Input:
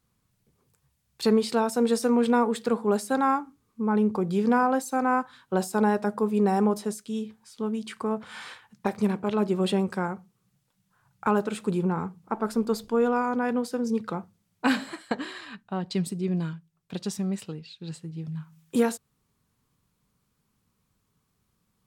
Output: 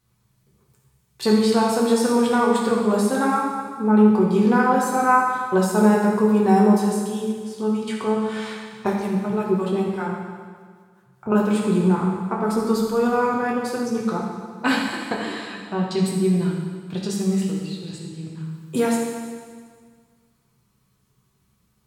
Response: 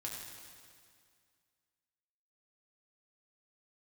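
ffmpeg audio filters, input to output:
-filter_complex "[0:a]asettb=1/sr,asplit=3[s0][s1][s2];[s0]atrim=end=8.934[s3];[s1]atrim=start=8.93:end=11.32,asetpts=PTS-STARTPTS,afade=t=in:d=0.004:c=qsin,afade=t=out:st=2.386:d=0.004:c=qsin,acrossover=split=560[s4][s5];[s4]aeval=exprs='val(0)*(1-1/2+1/2*cos(2*PI*5.1*n/s))':c=same[s6];[s5]aeval=exprs='val(0)*(1-1/2-1/2*cos(2*PI*5.1*n/s))':c=same[s7];[s6][s7]amix=inputs=2:normalize=0[s8];[s2]atrim=start=11.316[s9];[s3][s8]acrossfade=d=0.004:c1=hsin:c2=qsin[s10];[s10][s9]acrossfade=d=0.004:c1=qsin:c2=hsin[s11];[1:a]atrim=start_sample=2205,asetrate=52920,aresample=44100[s12];[s11][s12]afir=irnorm=-1:irlink=0,volume=2.66"

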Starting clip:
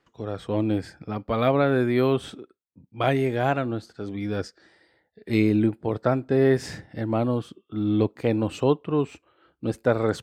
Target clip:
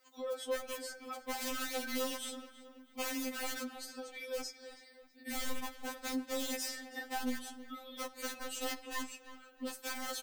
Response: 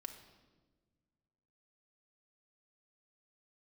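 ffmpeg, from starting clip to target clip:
-filter_complex "[0:a]aemphasis=mode=production:type=riaa,aeval=exprs='(mod(10.6*val(0)+1,2)-1)/10.6':c=same,acompressor=threshold=0.0112:ratio=3,asettb=1/sr,asplit=3[s0][s1][s2];[s0]atrim=end=4.384[s3];[s1]atrim=start=4.38:end=5.62,asetpts=PTS-STARTPTS,afade=t=in:d=0.004:c=qsin,afade=t=out:st=1.236:d=0.004:c=qsin,bass=f=250:g=14,treble=f=4000:g=-1[s4];[s2]atrim=start=5.616[s5];[s3][s4]acrossfade=d=0.004:c1=hsin:c2=qsin[s6];[s6][s5]acrossfade=d=0.004:c1=qsin:c2=hsin,asplit=2[s7][s8];[s8]adelay=324,lowpass=f=3200:p=1,volume=0.2,asplit=2[s9][s10];[s10]adelay=324,lowpass=f=3200:p=1,volume=0.47,asplit=2[s11][s12];[s12]adelay=324,lowpass=f=3200:p=1,volume=0.47,asplit=2[s13][s14];[s14]adelay=324,lowpass=f=3200:p=1,volume=0.47[s15];[s7][s9][s11][s13][s15]amix=inputs=5:normalize=0,asplit=2[s16][s17];[1:a]atrim=start_sample=2205,afade=t=out:st=0.44:d=0.01,atrim=end_sample=19845[s18];[s17][s18]afir=irnorm=-1:irlink=0,volume=0.794[s19];[s16][s19]amix=inputs=2:normalize=0,afftfilt=real='re*3.46*eq(mod(b,12),0)':imag='im*3.46*eq(mod(b,12),0)':win_size=2048:overlap=0.75,volume=0.794"

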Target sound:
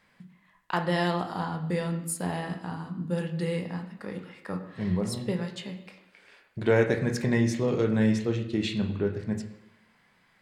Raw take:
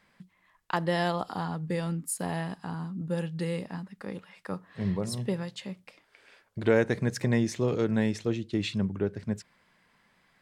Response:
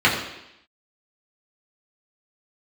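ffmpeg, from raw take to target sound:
-filter_complex "[0:a]asplit=2[s0][s1];[1:a]atrim=start_sample=2205,adelay=18[s2];[s1][s2]afir=irnorm=-1:irlink=0,volume=0.0596[s3];[s0][s3]amix=inputs=2:normalize=0"

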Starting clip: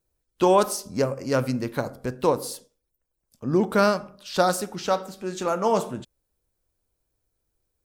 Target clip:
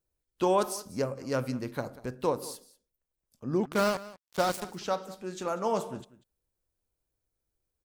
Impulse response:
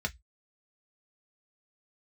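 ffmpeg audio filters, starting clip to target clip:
-filter_complex "[0:a]asettb=1/sr,asplit=3[s0][s1][s2];[s0]atrim=end=3.654[s3];[s1]atrim=start=3.65:end=4.65,asetpts=PTS-STARTPTS,afade=t=in:d=0.004:c=qsin,afade=t=out:st=0.996:d=0.004:c=qsin,acrusher=bits=3:mix=0:aa=0.5[s4];[s2]atrim=start=4.646[s5];[s3][s4]acrossfade=d=0.004:c1=hsin:c2=qsin[s6];[s6][s5]acrossfade=d=0.004:c1=qsin:c2=hsin,aecho=1:1:191:0.119,volume=0.447"

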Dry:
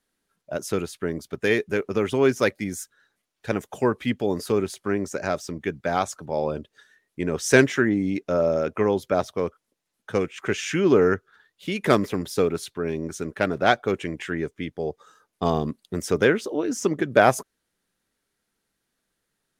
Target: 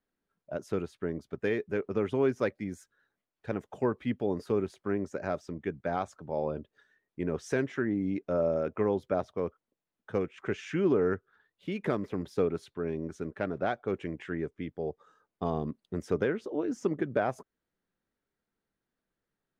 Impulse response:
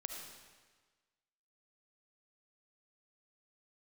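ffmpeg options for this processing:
-af "alimiter=limit=0.299:level=0:latency=1:release=295,lowpass=f=1300:p=1,volume=0.531"

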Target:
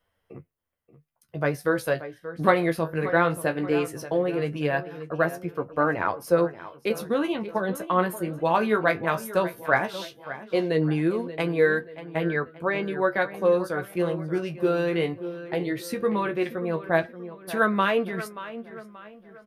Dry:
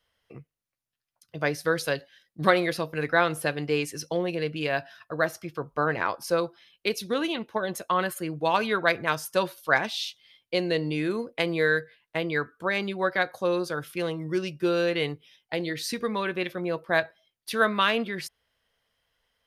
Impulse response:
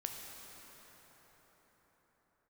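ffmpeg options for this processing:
-filter_complex "[0:a]asettb=1/sr,asplit=3[s0][s1][s2];[s0]atrim=end=12.254[s3];[s1]atrim=start=12.25:end=12.88,asetpts=PTS-STARTPTS,afade=t=in:d=0.004:c=qsin,afade=t=out:st=0.626:d=0.004:c=qsin,acrossover=split=4700[s4][s5];[s5]acompressor=threshold=0.00112:ratio=4:attack=1:release=60[s6];[s4][s6]amix=inputs=2:normalize=0[s7];[s2]atrim=start=12.876[s8];[s3][s7]acrossfade=d=0.004:c1=hsin:c2=qsin[s9];[s9][s8]acrossfade=d=0.004:c1=qsin:c2=hsin,equalizer=f=4700:w=0.56:g=-12.5,asplit=2[s10][s11];[s11]adelay=581,lowpass=f=3800:p=1,volume=0.2,asplit=2[s12][s13];[s13]adelay=581,lowpass=f=3800:p=1,volume=0.43,asplit=2[s14][s15];[s15]adelay=581,lowpass=f=3800:p=1,volume=0.43,asplit=2[s16][s17];[s17]adelay=581,lowpass=f=3800:p=1,volume=0.43[s18];[s10][s12][s14][s16][s18]amix=inputs=5:normalize=0,flanger=delay=10:depth=8.9:regen=35:speed=0.17:shape=triangular,volume=2.37"

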